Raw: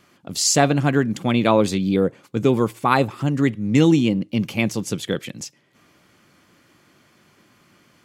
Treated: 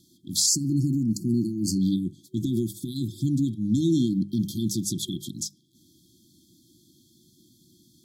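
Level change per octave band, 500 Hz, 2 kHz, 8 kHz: −16.0 dB, below −40 dB, −1.5 dB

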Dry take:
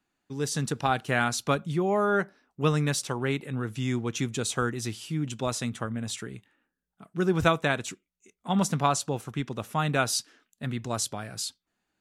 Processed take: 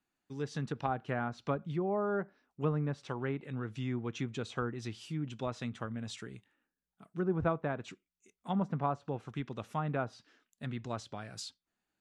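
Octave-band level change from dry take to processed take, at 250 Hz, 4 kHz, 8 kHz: −7.0, −14.5, −21.0 decibels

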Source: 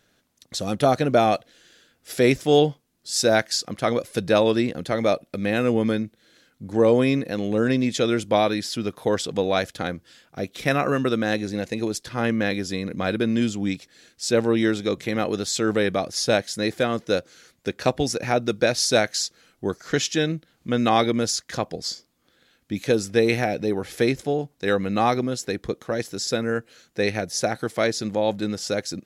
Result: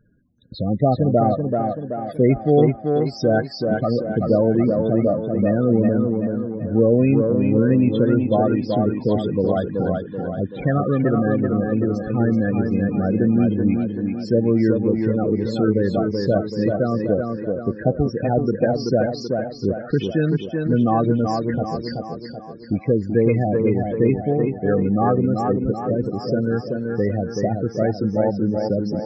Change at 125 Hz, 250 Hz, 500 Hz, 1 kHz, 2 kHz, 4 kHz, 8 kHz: +9.0 dB, +6.0 dB, +2.5 dB, +0.5 dB, −6.5 dB, −12.0 dB, below −20 dB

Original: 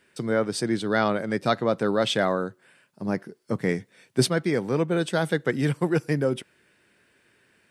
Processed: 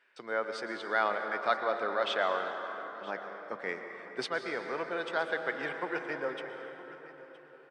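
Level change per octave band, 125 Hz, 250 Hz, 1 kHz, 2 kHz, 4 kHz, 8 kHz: −28.0, −18.0, −2.5, −2.0, −8.5, −19.0 decibels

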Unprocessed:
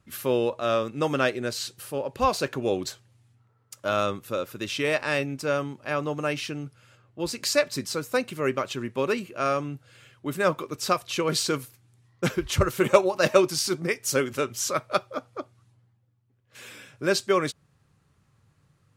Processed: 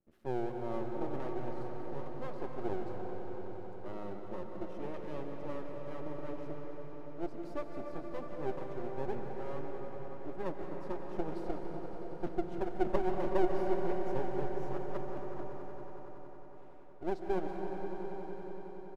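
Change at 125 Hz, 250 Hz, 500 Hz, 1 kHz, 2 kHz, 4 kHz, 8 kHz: −11.5 dB, −8.5 dB, −11.5 dB, −11.5 dB, −20.5 dB, −28.5 dB, below −35 dB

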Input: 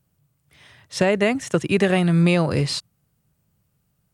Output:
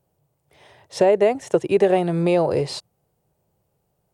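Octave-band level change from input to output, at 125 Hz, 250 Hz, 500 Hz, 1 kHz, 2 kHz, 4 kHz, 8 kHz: −7.0, −3.5, +4.5, +3.5, −7.5, −6.0, −5.5 decibels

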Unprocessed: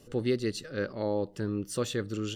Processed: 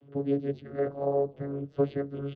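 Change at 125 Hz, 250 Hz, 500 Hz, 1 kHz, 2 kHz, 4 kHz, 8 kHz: 0.0 dB, −0.5 dB, +3.0 dB, +3.0 dB, −9.5 dB, below −15 dB, below −35 dB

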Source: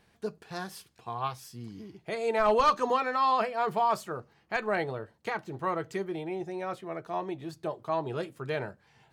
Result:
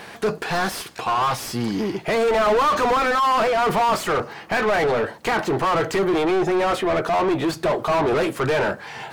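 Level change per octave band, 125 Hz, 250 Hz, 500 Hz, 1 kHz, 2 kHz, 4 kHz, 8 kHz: +11.0, +13.5, +11.0, +9.0, +12.0, +13.5, +15.5 decibels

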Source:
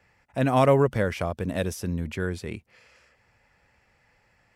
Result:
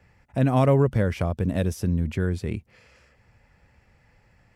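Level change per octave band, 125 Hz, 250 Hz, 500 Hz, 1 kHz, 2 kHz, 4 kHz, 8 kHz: +5.5, +3.0, −1.5, −3.0, −3.0, −3.0, −2.5 decibels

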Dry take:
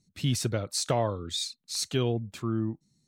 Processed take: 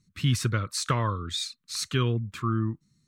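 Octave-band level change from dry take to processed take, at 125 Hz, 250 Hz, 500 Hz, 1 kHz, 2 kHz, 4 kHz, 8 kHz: +4.5, +0.5, −4.0, +3.5, +6.5, +0.5, −1.0 decibels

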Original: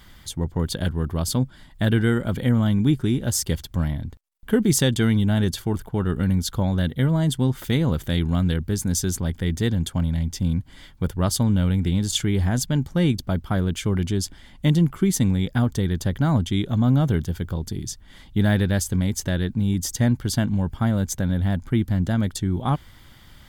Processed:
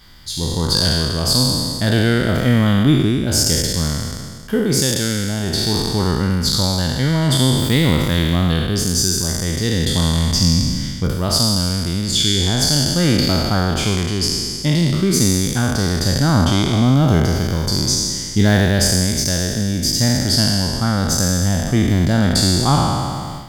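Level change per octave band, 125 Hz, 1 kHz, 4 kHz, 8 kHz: +4.5, +9.0, +14.5, +10.5 decibels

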